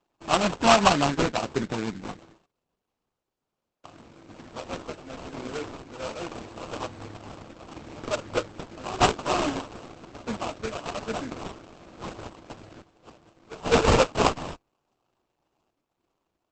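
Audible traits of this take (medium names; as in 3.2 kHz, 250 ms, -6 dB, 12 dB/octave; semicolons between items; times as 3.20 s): aliases and images of a low sample rate 1.9 kHz, jitter 20%; random-step tremolo; Opus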